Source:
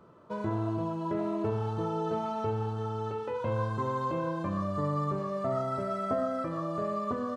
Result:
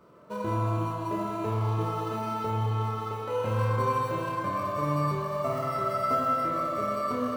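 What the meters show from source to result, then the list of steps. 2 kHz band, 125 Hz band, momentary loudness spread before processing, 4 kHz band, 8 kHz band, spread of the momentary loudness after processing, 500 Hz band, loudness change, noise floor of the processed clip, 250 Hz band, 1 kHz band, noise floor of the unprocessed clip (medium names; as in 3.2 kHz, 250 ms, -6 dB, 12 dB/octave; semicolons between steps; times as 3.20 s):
+5.5 dB, +4.5 dB, 3 LU, +6.5 dB, no reading, 5 LU, +1.0 dB, +3.5 dB, -35 dBFS, -0.5 dB, +5.5 dB, -37 dBFS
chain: bass shelf 450 Hz -5 dB; band-stop 810 Hz, Q 12; in parallel at -12 dB: sample-and-hold 13×; on the sum: flutter echo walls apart 4.8 m, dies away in 0.29 s; spring tank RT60 4 s, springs 44/54 ms, chirp 55 ms, DRR -1.5 dB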